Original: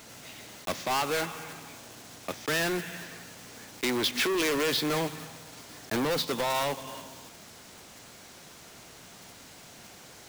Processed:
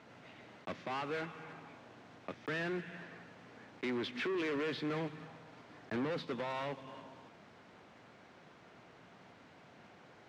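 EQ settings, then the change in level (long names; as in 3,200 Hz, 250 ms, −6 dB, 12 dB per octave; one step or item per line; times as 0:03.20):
dynamic equaliser 810 Hz, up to −6 dB, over −43 dBFS, Q 0.91
band-pass filter 100–2,100 Hz
−5.5 dB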